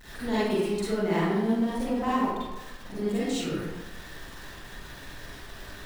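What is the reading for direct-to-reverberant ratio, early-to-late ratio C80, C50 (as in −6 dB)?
−10.0 dB, 0.0 dB, −5.0 dB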